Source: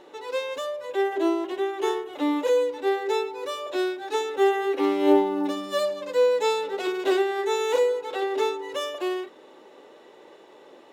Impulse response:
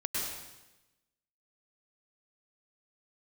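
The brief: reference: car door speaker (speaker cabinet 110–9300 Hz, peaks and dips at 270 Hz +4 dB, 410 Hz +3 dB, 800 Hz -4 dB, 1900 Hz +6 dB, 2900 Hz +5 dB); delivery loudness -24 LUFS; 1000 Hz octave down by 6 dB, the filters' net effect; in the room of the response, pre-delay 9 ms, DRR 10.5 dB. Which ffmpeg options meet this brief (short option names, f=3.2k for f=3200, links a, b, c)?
-filter_complex "[0:a]equalizer=f=1k:t=o:g=-5,asplit=2[a][b];[1:a]atrim=start_sample=2205,adelay=9[c];[b][c]afir=irnorm=-1:irlink=0,volume=-16dB[d];[a][d]amix=inputs=2:normalize=0,highpass=110,equalizer=f=270:t=q:w=4:g=4,equalizer=f=410:t=q:w=4:g=3,equalizer=f=800:t=q:w=4:g=-4,equalizer=f=1.9k:t=q:w=4:g=6,equalizer=f=2.9k:t=q:w=4:g=5,lowpass=f=9.3k:w=0.5412,lowpass=f=9.3k:w=1.3066,volume=0.5dB"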